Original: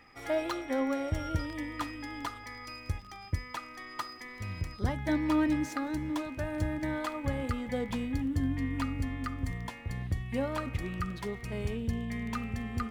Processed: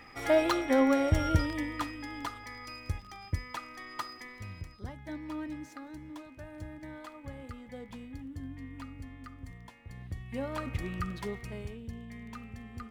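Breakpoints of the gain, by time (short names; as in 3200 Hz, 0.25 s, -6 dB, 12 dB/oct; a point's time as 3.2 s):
1.33 s +6 dB
1.94 s -0.5 dB
4.2 s -0.5 dB
4.88 s -11.5 dB
9.78 s -11.5 dB
10.71 s -0.5 dB
11.36 s -0.5 dB
11.76 s -9.5 dB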